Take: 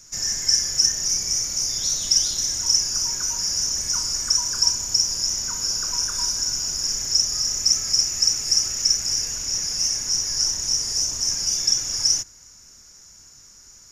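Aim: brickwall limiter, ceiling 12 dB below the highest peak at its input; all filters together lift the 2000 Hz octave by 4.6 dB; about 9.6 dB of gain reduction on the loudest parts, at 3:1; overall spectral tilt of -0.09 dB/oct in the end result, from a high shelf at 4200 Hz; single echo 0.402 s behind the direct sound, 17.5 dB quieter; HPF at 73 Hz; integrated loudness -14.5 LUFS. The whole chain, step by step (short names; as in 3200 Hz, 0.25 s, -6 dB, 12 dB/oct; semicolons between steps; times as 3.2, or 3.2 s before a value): HPF 73 Hz; bell 2000 Hz +5 dB; high shelf 4200 Hz +4 dB; compressor 3:1, threshold -25 dBFS; limiter -23 dBFS; echo 0.402 s -17.5 dB; gain +14.5 dB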